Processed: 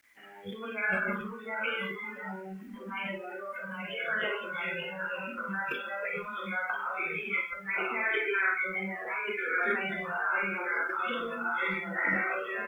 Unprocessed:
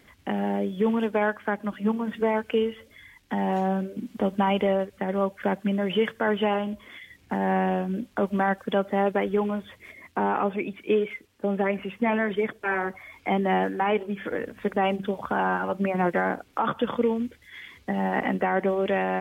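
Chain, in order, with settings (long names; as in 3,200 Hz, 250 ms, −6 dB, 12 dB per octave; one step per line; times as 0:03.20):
time stretch by phase vocoder 0.66×
speech leveller within 3 dB 2 s
delay with pitch and tempo change per echo 652 ms, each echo −1 semitone, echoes 2, each echo −6 dB
high-shelf EQ 2,800 Hz +9.5 dB
ambience of single reflections 37 ms −9.5 dB, 47 ms −3.5 dB
output level in coarse steps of 18 dB
high-pass filter 350 Hz 6 dB per octave
flat-topped bell 1,800 Hz +11 dB 1.1 octaves
transient designer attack −1 dB, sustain +11 dB
convolution reverb RT60 0.95 s, pre-delay 6 ms, DRR 3 dB
bit-depth reduction 8 bits, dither none
noise reduction from a noise print of the clip's start 20 dB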